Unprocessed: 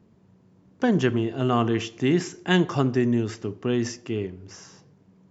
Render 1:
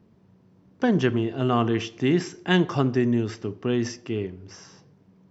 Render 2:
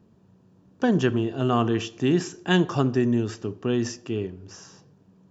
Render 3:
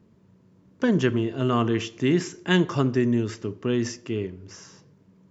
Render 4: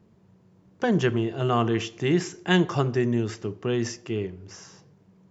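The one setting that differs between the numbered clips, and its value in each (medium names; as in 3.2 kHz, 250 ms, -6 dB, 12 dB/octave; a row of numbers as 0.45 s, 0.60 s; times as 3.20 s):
band-stop, frequency: 6.9 kHz, 2.1 kHz, 760 Hz, 260 Hz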